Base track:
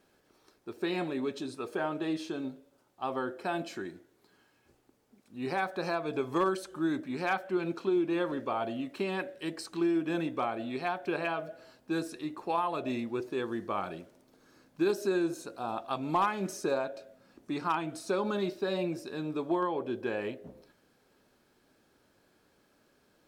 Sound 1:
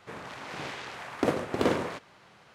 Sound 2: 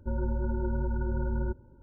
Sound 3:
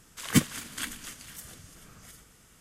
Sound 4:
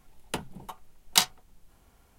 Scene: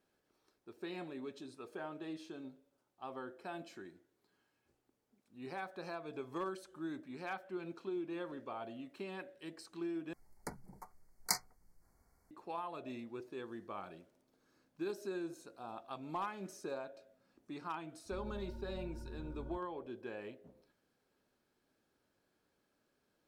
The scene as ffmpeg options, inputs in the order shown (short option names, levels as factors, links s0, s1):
-filter_complex "[0:a]volume=0.251[s0];[4:a]asuperstop=centerf=3100:order=20:qfactor=1.6[s1];[s0]asplit=2[s2][s3];[s2]atrim=end=10.134[s4];[s1]atrim=end=2.18,asetpts=PTS-STARTPTS,volume=0.282[s5];[s3]atrim=start=12.306[s6];[2:a]atrim=end=1.82,asetpts=PTS-STARTPTS,volume=0.126,afade=t=in:d=0.004:c=hsin,afade=t=out:st=1.816:d=0.004:c=hsin,adelay=18050[s7];[s4][s5]acrossfade=d=0.004:c1=hsin:c2=hsin[s8];[s8][s6]acrossfade=d=0.004:c1=hsin:c2=hsin[s9];[s9][s7]amix=inputs=2:normalize=0"